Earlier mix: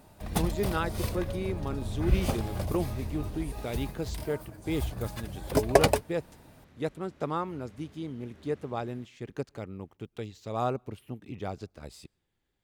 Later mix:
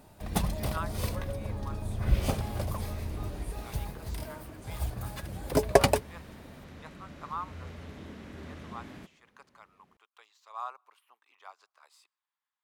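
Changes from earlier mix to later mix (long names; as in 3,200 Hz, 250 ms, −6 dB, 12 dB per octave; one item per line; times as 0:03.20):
speech: add four-pole ladder high-pass 950 Hz, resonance 65%
second sound +10.5 dB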